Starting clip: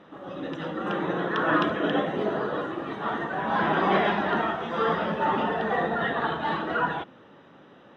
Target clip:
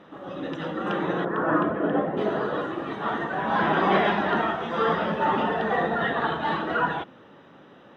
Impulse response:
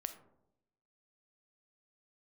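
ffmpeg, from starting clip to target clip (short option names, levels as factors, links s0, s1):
-filter_complex "[0:a]asplit=3[s0][s1][s2];[s0]afade=t=out:st=1.24:d=0.02[s3];[s1]lowpass=1300,afade=t=in:st=1.24:d=0.02,afade=t=out:st=2.16:d=0.02[s4];[s2]afade=t=in:st=2.16:d=0.02[s5];[s3][s4][s5]amix=inputs=3:normalize=0,volume=1.19"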